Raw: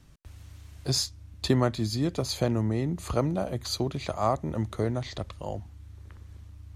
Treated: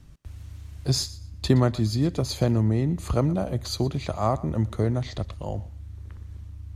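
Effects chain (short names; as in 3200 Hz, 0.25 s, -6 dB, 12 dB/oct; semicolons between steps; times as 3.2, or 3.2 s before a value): low shelf 240 Hz +7.5 dB; on a send: thinning echo 0.12 s, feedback 22%, high-pass 520 Hz, level -18 dB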